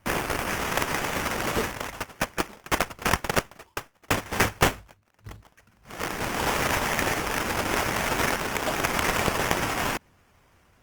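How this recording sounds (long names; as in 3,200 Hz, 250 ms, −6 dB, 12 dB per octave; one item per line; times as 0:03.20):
phaser sweep stages 2, 0.84 Hz, lowest notch 430–2,200 Hz
aliases and images of a low sample rate 4,100 Hz, jitter 20%
Opus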